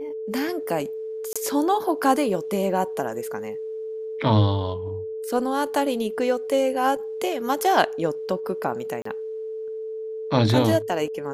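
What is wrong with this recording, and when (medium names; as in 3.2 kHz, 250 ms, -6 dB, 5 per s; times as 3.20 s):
whine 440 Hz -29 dBFS
1.33–1.36 s: dropout 26 ms
9.02–9.05 s: dropout 34 ms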